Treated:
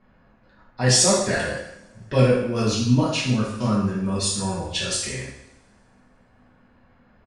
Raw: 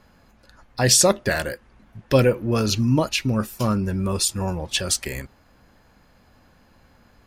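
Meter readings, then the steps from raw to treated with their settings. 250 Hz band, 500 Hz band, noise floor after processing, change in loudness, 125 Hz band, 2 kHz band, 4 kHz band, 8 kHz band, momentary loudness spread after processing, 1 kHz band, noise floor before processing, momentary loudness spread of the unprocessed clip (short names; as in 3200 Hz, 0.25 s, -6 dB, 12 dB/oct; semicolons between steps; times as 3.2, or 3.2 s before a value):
+0.5 dB, -1.0 dB, -58 dBFS, -0.5 dB, +0.5 dB, -0.5 dB, -0.5 dB, -1.0 dB, 13 LU, -0.5 dB, -57 dBFS, 14 LU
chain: low-pass opened by the level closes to 2200 Hz, open at -17 dBFS; two-slope reverb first 0.77 s, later 2.2 s, from -26 dB, DRR -7 dB; downsampling 22050 Hz; gain -8.5 dB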